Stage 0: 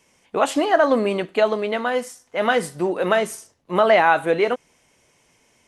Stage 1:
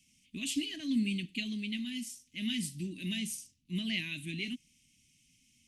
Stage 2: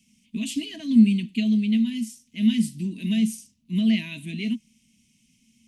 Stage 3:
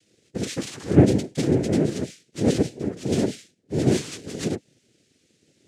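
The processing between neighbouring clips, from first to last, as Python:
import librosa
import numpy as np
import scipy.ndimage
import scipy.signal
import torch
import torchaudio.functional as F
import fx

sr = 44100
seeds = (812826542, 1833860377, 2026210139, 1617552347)

y1 = scipy.signal.sosfilt(scipy.signal.ellip(3, 1.0, 40, [250.0, 2600.0], 'bandstop', fs=sr, output='sos'), x)
y1 = F.gain(torch.from_numpy(y1), -4.5).numpy()
y2 = fx.small_body(y1, sr, hz=(220.0, 450.0, 650.0, 960.0), ring_ms=85, db=16)
y2 = F.gain(torch.from_numpy(y2), 2.0).numpy()
y3 = fx.noise_vocoder(y2, sr, seeds[0], bands=3)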